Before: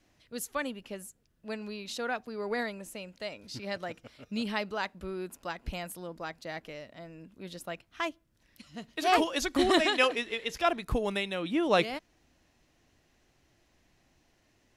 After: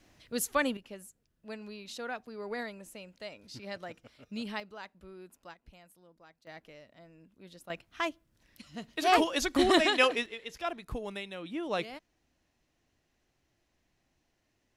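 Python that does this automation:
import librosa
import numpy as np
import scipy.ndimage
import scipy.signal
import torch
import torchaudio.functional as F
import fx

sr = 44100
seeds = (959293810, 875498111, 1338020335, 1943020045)

y = fx.gain(x, sr, db=fx.steps((0.0, 5.0), (0.77, -5.0), (4.6, -12.0), (5.54, -19.0), (6.47, -9.0), (7.7, 0.5), (10.26, -8.0)))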